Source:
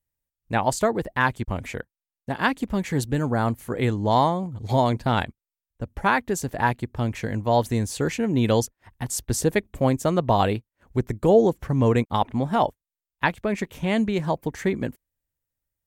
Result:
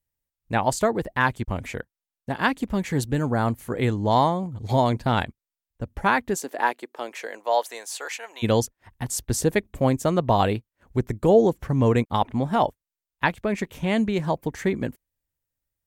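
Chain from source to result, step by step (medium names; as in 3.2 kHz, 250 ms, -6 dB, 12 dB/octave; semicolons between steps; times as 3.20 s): 6.34–8.42 s: high-pass 270 Hz -> 800 Hz 24 dB/octave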